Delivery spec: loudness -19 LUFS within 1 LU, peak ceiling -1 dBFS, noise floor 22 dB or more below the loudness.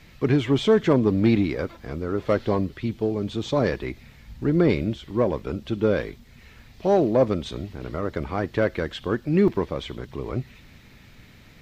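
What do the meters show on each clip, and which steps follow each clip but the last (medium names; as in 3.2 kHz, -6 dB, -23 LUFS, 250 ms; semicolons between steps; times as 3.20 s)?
dropouts 1; longest dropout 1.8 ms; loudness -24.0 LUFS; peak level -8.0 dBFS; loudness target -19.0 LUFS
-> interpolate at 9.48 s, 1.8 ms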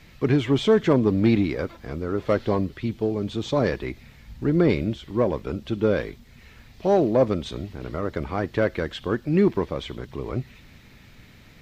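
dropouts 0; loudness -24.0 LUFS; peak level -8.0 dBFS; loudness target -19.0 LUFS
-> trim +5 dB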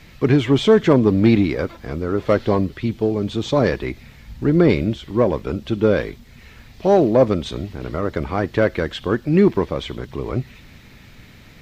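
loudness -19.0 LUFS; peak level -3.0 dBFS; noise floor -45 dBFS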